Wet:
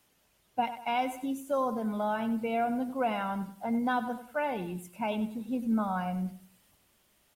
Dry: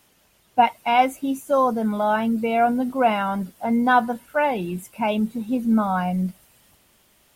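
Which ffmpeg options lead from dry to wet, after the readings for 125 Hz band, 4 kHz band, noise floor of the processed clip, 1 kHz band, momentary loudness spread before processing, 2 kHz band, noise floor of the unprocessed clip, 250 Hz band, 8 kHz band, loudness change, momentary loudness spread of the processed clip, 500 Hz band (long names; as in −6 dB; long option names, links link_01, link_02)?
−9.0 dB, −10.0 dB, −69 dBFS, −11.5 dB, 8 LU, −11.0 dB, −61 dBFS, −9.0 dB, −9.0 dB, −10.0 dB, 6 LU, −10.0 dB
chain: -filter_complex "[0:a]aecho=1:1:96|192|288:0.211|0.0697|0.023,acrossover=split=480|3000[link_01][link_02][link_03];[link_02]acompressor=threshold=-19dB:ratio=6[link_04];[link_01][link_04][link_03]amix=inputs=3:normalize=0,volume=-9dB"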